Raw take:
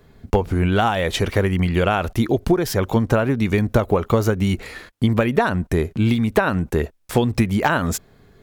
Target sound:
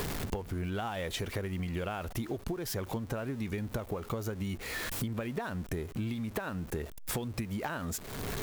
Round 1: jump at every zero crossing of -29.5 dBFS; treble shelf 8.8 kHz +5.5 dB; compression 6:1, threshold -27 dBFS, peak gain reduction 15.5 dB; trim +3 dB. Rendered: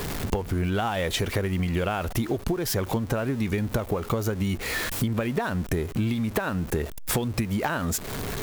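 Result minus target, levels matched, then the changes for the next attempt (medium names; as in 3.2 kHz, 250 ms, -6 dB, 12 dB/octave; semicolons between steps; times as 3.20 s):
compression: peak gain reduction -9 dB
change: compression 6:1, threshold -38 dBFS, peak gain reduction 24.5 dB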